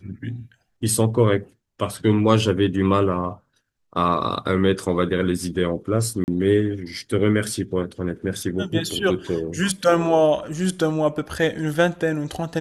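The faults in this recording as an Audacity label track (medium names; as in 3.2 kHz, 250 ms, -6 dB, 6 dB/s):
6.240000	6.280000	dropout 39 ms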